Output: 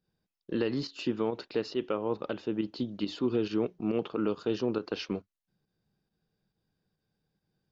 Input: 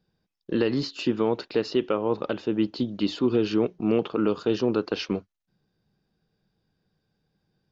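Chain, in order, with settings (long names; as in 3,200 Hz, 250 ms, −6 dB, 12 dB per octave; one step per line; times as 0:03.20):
fake sidechain pumping 138 BPM, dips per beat 1, −8 dB, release 87 ms
level −6 dB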